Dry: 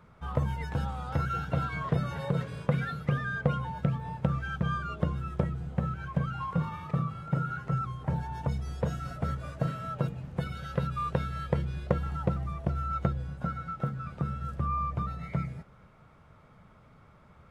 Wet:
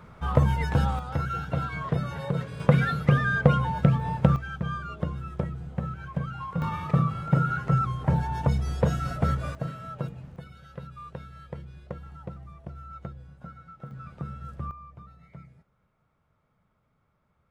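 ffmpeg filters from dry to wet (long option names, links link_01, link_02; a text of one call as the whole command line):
ffmpeg -i in.wav -af "asetnsamples=nb_out_samples=441:pad=0,asendcmd='0.99 volume volume 1dB;2.6 volume volume 8dB;4.36 volume volume -1dB;6.62 volume volume 7dB;9.55 volume volume -2.5dB;10.36 volume volume -10.5dB;13.91 volume volume -4dB;14.71 volume volume -15dB',volume=8dB" out.wav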